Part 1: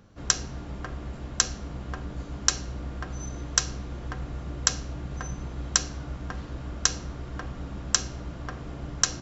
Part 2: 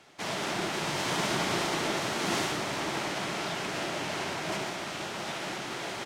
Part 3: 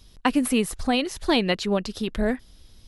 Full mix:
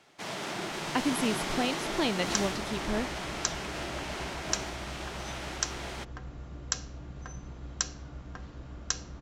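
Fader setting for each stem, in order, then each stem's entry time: −8.0, −4.0, −8.0 decibels; 2.05, 0.00, 0.70 seconds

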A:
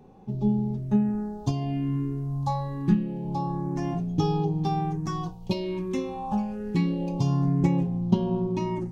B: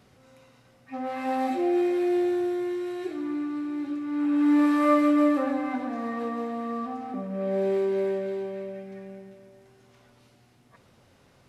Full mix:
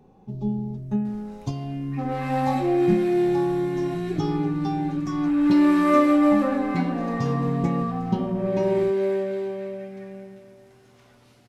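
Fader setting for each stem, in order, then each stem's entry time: −2.5, +3.0 decibels; 0.00, 1.05 seconds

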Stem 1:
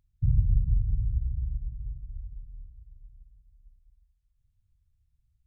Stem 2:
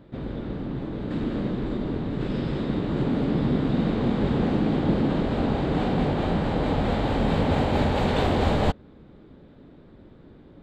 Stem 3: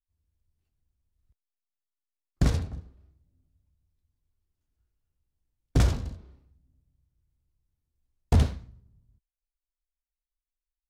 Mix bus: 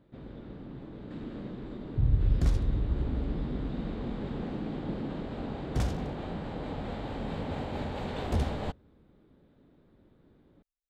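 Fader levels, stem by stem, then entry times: −2.0, −12.5, −8.5 decibels; 1.75, 0.00, 0.00 seconds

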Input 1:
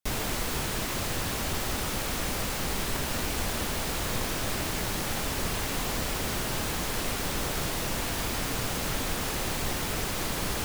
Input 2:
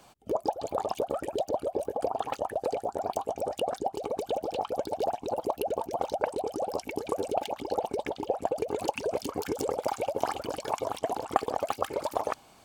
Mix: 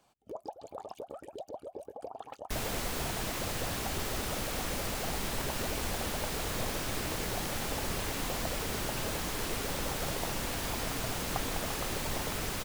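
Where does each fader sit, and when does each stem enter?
−4.5, −13.0 decibels; 2.45, 0.00 seconds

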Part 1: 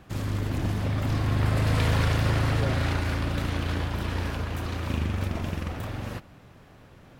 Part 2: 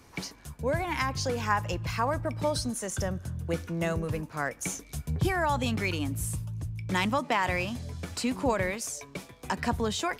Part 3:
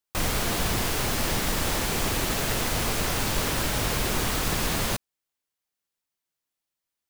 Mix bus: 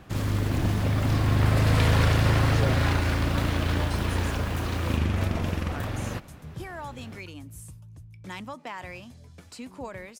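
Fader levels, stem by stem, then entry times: +2.5, −11.0, −19.5 decibels; 0.00, 1.35, 0.00 seconds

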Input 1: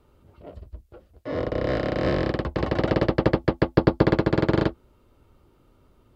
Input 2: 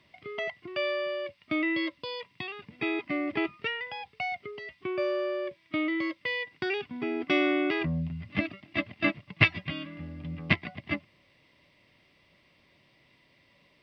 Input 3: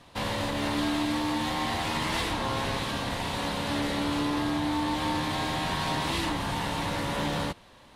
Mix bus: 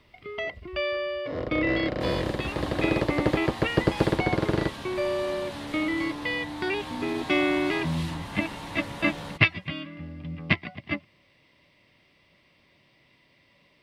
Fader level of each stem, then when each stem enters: −4.5, +1.5, −8.0 decibels; 0.00, 0.00, 1.85 seconds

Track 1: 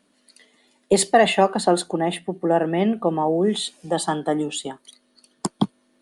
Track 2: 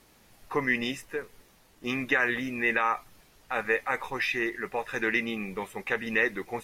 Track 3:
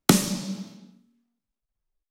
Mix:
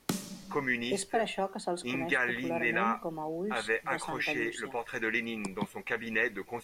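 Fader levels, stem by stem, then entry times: −15.5, −4.0, −15.5 decibels; 0.00, 0.00, 0.00 seconds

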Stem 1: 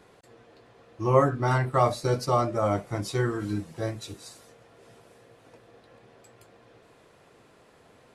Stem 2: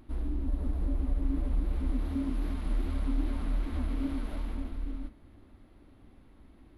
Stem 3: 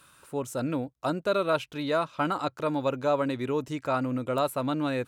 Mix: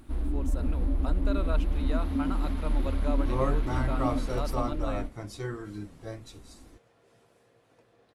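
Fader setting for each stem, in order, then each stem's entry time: −9.0, +3.0, −10.0 decibels; 2.25, 0.00, 0.00 seconds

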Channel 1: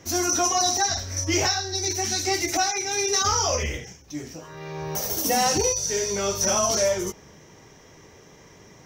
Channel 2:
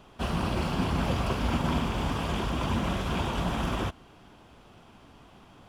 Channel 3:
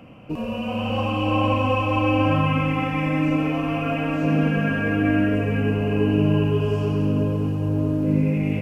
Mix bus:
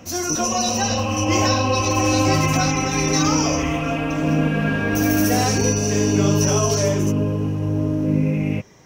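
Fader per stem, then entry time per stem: −0.5, −6.0, +1.0 decibels; 0.00, 1.55, 0.00 seconds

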